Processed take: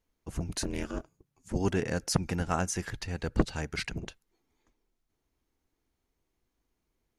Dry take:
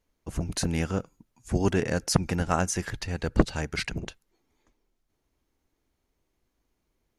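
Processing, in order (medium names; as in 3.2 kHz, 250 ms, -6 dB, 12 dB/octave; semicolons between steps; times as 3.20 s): band-stop 580 Hz, Q 14; 0.63–1.56 s: ring modulator 140 Hz; in parallel at -10 dB: saturation -16.5 dBFS, distortion -12 dB; on the sum: trim -6 dB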